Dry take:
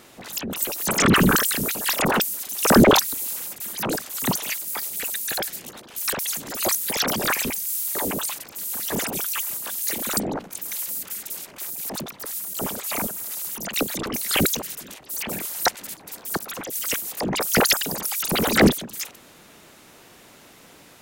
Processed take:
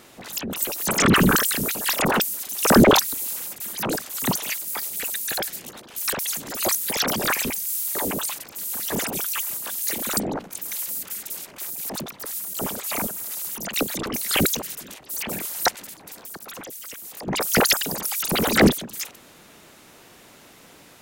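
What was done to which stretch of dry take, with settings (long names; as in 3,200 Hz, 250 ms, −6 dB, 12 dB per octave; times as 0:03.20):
0:15.81–0:17.28: downward compressor 10 to 1, threshold −34 dBFS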